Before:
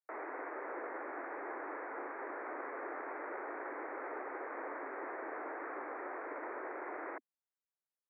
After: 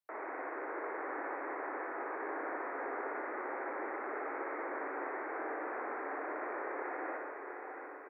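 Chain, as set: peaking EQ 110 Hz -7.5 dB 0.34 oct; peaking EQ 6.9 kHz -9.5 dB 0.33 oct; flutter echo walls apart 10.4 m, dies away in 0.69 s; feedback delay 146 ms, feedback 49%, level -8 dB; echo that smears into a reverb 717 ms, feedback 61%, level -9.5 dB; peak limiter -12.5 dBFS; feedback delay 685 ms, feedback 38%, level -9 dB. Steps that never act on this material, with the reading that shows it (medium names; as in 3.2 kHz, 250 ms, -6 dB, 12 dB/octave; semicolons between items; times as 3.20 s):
peaking EQ 110 Hz: input has nothing below 210 Hz; peaking EQ 6.9 kHz: input has nothing above 2.6 kHz; peak limiter -12.5 dBFS: peak at its input -28.0 dBFS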